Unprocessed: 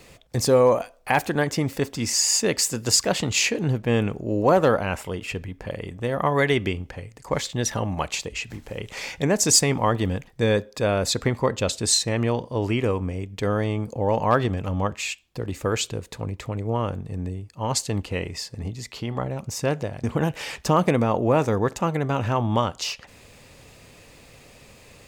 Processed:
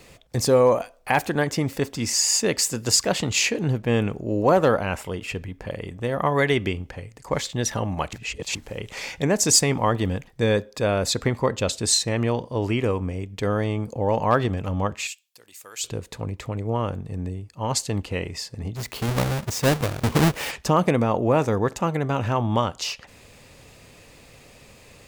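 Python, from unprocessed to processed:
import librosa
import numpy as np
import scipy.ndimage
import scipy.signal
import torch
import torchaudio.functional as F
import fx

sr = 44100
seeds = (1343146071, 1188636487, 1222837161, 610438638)

y = fx.differentiator(x, sr, at=(15.07, 15.84))
y = fx.halfwave_hold(y, sr, at=(18.75, 20.5), fade=0.02)
y = fx.edit(y, sr, fx.reverse_span(start_s=8.13, length_s=0.42), tone=tone)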